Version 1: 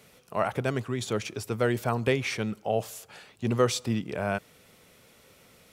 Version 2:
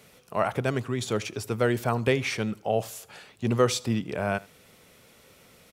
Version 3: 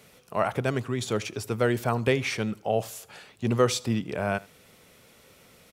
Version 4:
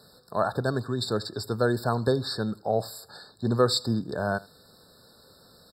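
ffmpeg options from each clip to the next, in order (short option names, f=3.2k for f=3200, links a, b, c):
-af "aecho=1:1:78:0.075,volume=1.5dB"
-af anull
-af "equalizer=f=4.3k:t=o:w=0.8:g=8.5,afftfilt=real='re*eq(mod(floor(b*sr/1024/1800),2),0)':imag='im*eq(mod(floor(b*sr/1024/1800),2),0)':win_size=1024:overlap=0.75"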